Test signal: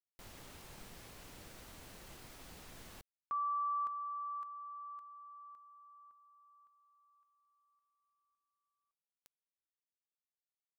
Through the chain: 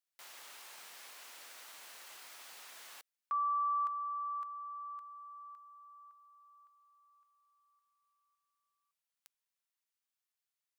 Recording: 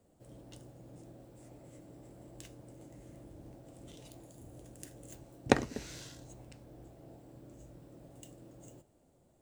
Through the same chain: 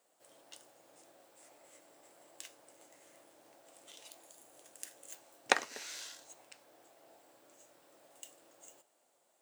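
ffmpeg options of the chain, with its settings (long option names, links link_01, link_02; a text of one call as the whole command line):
ffmpeg -i in.wav -af "highpass=940,volume=4.5dB" out.wav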